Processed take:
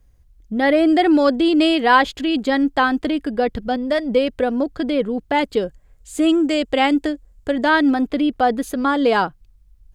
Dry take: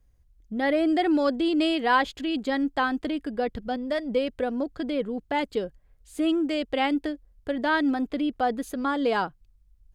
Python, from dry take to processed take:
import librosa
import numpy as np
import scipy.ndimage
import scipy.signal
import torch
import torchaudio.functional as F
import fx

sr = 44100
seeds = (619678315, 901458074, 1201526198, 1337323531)

y = fx.peak_eq(x, sr, hz=7400.0, db=8.5, octaves=0.38, at=(5.62, 7.71))
y = F.gain(torch.from_numpy(y), 8.0).numpy()